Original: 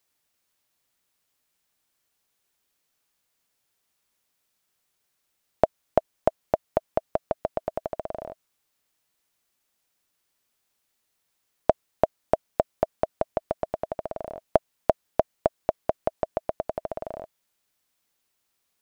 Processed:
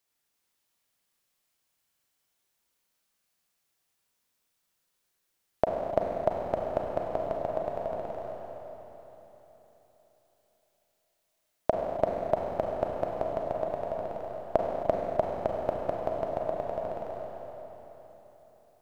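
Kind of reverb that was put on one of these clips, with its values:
four-comb reverb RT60 3.9 s, combs from 33 ms, DRR −1.5 dB
level −5.5 dB

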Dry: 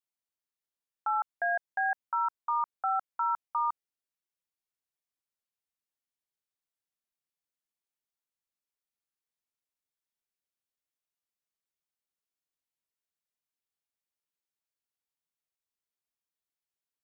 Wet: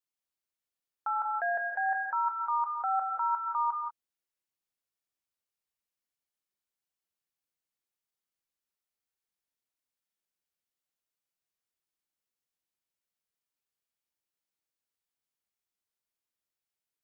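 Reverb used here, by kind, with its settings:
reverb whose tail is shaped and stops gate 210 ms rising, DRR 2.5 dB
level −1.5 dB

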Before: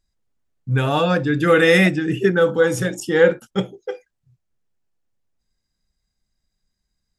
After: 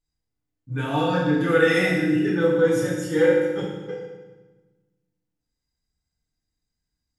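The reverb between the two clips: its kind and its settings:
feedback delay network reverb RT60 1.2 s, low-frequency decay 1.5×, high-frequency decay 0.9×, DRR −7.5 dB
level −13.5 dB

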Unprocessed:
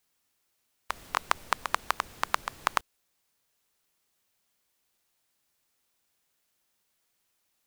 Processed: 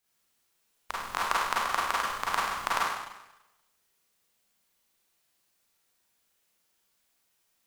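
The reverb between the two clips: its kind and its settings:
four-comb reverb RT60 0.95 s, combs from 33 ms, DRR −6.5 dB
level −5 dB

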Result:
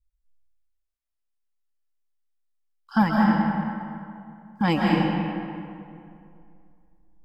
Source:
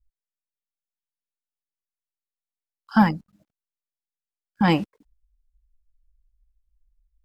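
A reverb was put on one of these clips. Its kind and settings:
comb and all-pass reverb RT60 2.5 s, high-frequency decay 0.6×, pre-delay 105 ms, DRR −3.5 dB
level −3.5 dB

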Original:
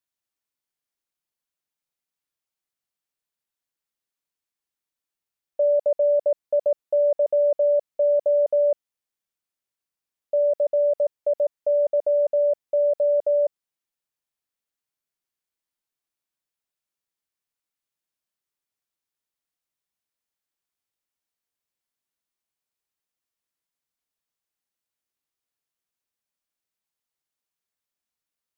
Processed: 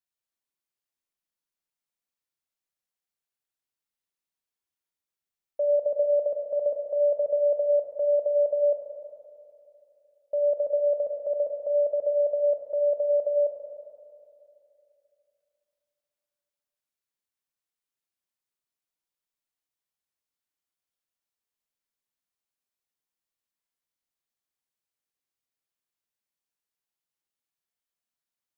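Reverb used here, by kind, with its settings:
four-comb reverb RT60 2.8 s, combs from 33 ms, DRR 2 dB
level −5.5 dB

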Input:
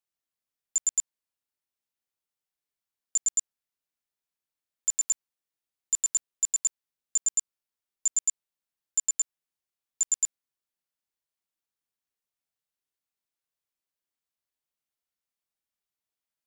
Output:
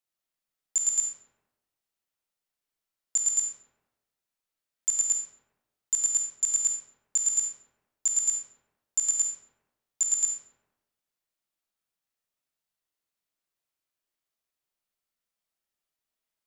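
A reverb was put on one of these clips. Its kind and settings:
comb and all-pass reverb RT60 1.1 s, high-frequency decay 0.55×, pre-delay 5 ms, DRR 0 dB

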